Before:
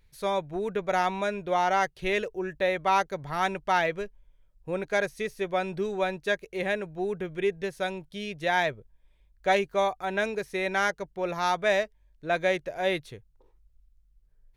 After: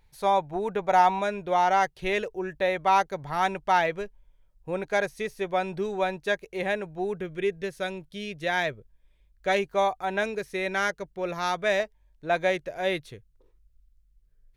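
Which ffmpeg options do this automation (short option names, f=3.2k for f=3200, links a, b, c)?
-af "asetnsamples=n=441:p=0,asendcmd='1.19 equalizer g 4.5;7.17 equalizer g -5;9.57 equalizer g 4;10.23 equalizer g -3.5;11.8 equalizer g 5.5;12.5 equalizer g -2;13.14 equalizer g -11',equalizer=f=840:t=o:w=0.47:g=12"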